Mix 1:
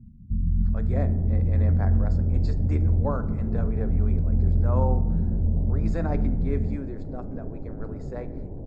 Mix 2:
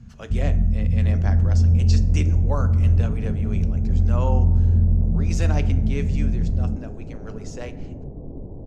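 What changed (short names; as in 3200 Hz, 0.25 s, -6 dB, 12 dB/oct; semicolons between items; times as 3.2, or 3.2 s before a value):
speech: entry -0.55 s; first sound: add bell 80 Hz +5 dB 2.6 oct; master: remove running mean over 15 samples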